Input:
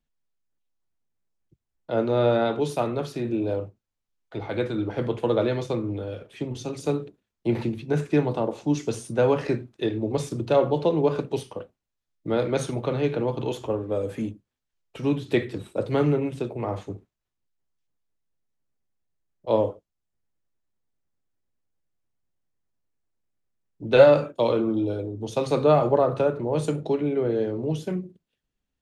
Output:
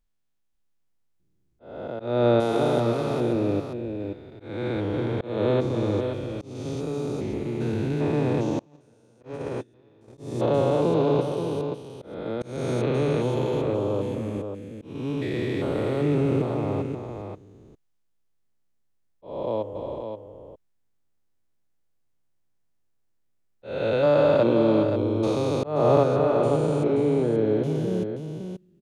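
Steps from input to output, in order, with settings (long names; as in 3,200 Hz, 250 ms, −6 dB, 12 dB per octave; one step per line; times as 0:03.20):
spectrum averaged block by block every 400 ms
on a send: single-tap delay 529 ms −7 dB
0:08.59–0:10.18: on the sum: noise gate −24 dBFS, range −30 dB
volume swells 275 ms
level +4 dB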